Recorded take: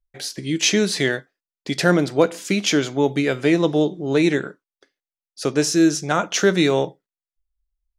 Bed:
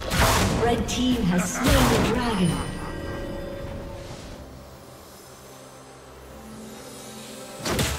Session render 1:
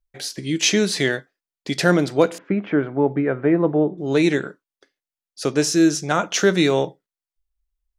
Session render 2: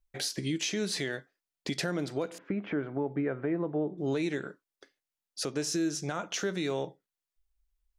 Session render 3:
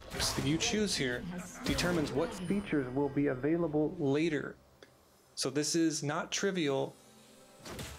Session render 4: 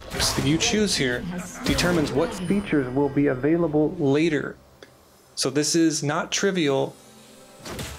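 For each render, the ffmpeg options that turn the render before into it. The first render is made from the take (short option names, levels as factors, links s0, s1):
-filter_complex "[0:a]asettb=1/sr,asplit=3[s0][s1][s2];[s0]atrim=end=2.384[s3];[s1]atrim=start=2.38:end=3.98,asetpts=PTS-STARTPTS,afade=t=in:d=0.004:c=qsin,afade=t=out:st=1.596:d=0.004:c=qsin,lowpass=f=1700:w=0.5412,lowpass=f=1700:w=1.3066[s4];[s2]atrim=start=3.976[s5];[s3][s4]acrossfade=d=0.004:c1=hsin:c2=qsin[s6];[s6][s5]acrossfade=d=0.004:c1=qsin:c2=hsin"
-af "acompressor=threshold=0.0178:ratio=1.5,alimiter=limit=0.0841:level=0:latency=1:release=294"
-filter_complex "[1:a]volume=0.112[s0];[0:a][s0]amix=inputs=2:normalize=0"
-af "volume=3.16"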